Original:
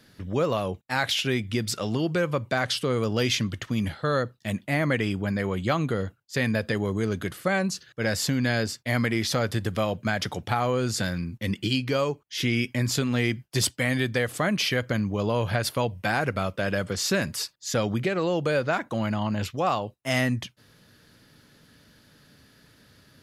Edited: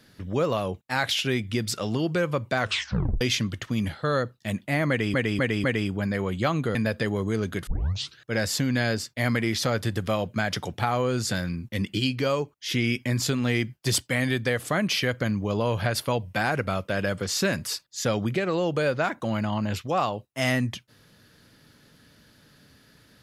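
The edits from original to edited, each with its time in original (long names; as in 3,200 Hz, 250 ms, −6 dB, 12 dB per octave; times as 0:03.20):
0:02.59: tape stop 0.62 s
0:04.89–0:05.14: repeat, 4 plays
0:06.00–0:06.44: remove
0:07.36: tape start 0.51 s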